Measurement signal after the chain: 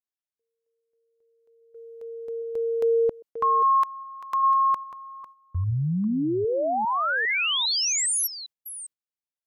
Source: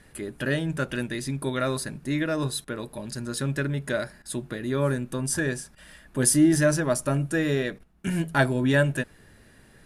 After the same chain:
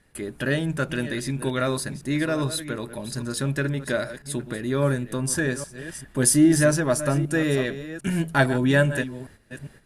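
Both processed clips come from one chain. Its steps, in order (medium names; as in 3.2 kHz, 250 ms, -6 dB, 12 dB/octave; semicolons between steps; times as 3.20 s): chunks repeated in reverse 403 ms, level -12.5 dB; gate -49 dBFS, range -10 dB; trim +2 dB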